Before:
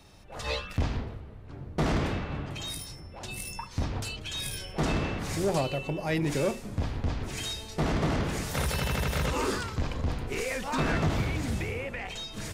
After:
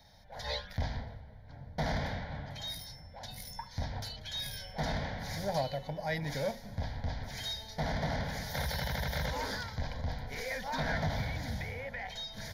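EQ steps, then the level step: low shelf 220 Hz -5 dB; fixed phaser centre 1800 Hz, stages 8; -1.0 dB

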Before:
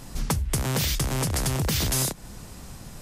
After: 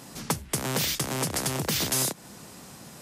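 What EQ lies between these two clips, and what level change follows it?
HPF 180 Hz 12 dB/oct; 0.0 dB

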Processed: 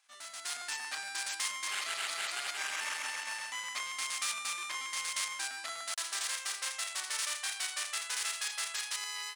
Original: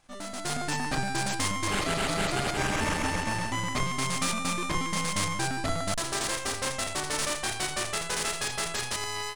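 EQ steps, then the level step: HPF 1500 Hz 12 dB/oct; -3.5 dB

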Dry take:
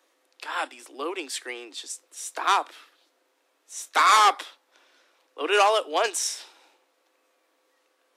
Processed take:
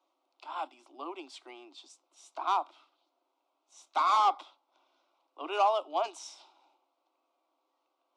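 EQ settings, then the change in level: BPF 370–4400 Hz; high shelf 2300 Hz -9 dB; fixed phaser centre 470 Hz, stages 6; -2.5 dB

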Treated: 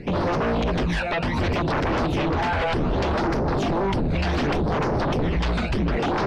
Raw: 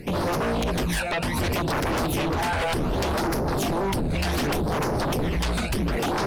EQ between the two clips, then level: air absorption 160 m; +2.5 dB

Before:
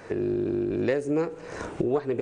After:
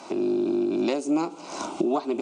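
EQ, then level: BPF 150–6600 Hz; tilt +2 dB/oct; fixed phaser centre 470 Hz, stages 6; +8.5 dB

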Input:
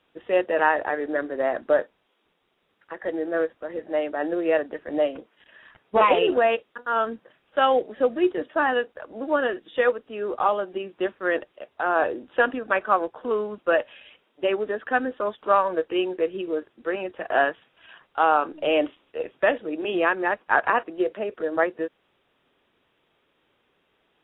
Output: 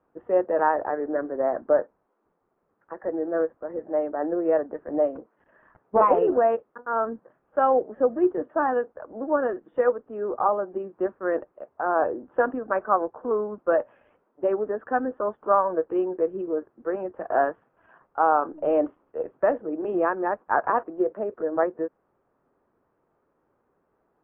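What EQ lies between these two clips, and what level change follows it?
LPF 1300 Hz 24 dB/oct; 0.0 dB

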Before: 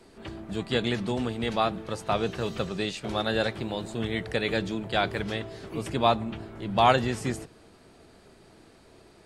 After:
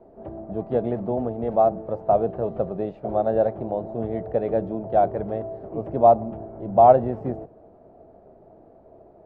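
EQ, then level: synth low-pass 660 Hz, resonance Q 3.8; 0.0 dB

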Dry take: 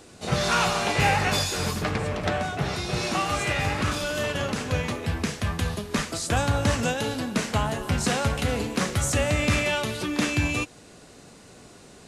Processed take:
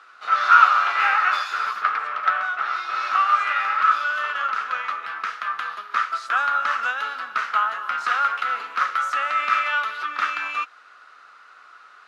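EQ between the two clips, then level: resonant high-pass 1300 Hz, resonance Q 11; air absorption 260 m; bell 12000 Hz +12 dB 0.79 oct; 0.0 dB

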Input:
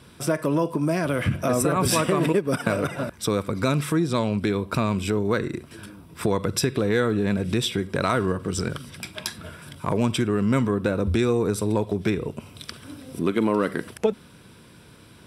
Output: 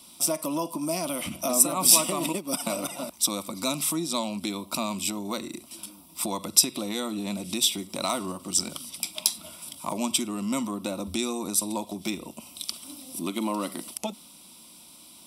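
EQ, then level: tilt +4 dB/oct; low shelf 500 Hz +6 dB; fixed phaser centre 440 Hz, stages 6; -2.0 dB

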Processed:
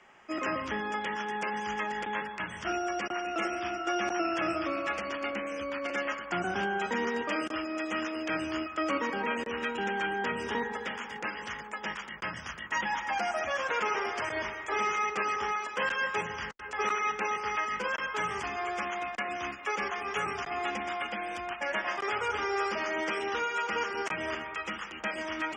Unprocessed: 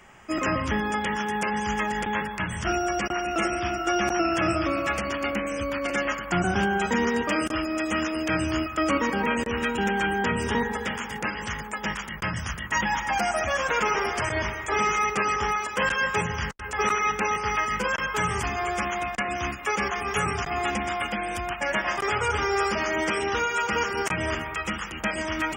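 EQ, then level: three-band isolator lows -14 dB, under 230 Hz, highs -19 dB, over 6400 Hz; -5.5 dB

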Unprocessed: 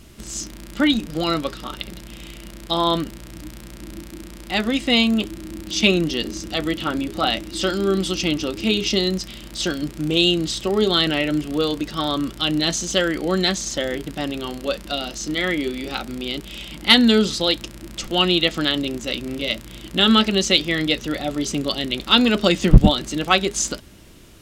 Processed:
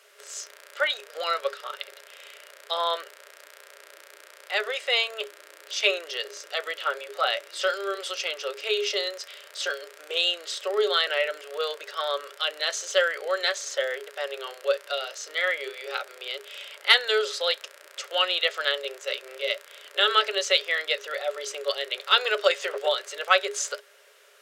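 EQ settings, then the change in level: rippled Chebyshev high-pass 400 Hz, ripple 9 dB; +1.5 dB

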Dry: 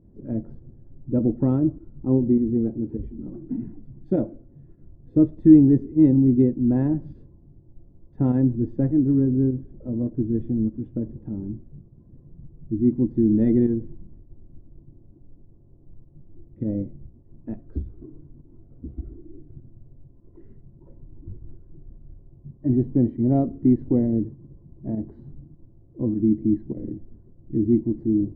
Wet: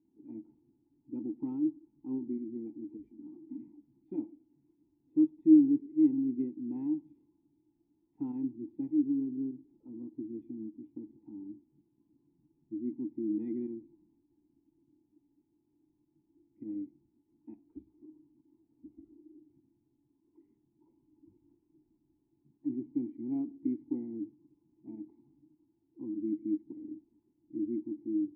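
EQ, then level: low shelf 440 Hz -9 dB; dynamic EQ 1000 Hz, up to -4 dB, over -47 dBFS, Q 0.87; vowel filter u; 0.0 dB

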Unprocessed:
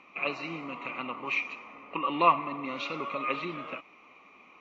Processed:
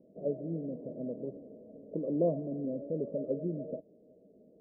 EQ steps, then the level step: rippled Chebyshev low-pass 650 Hz, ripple 6 dB; +7.5 dB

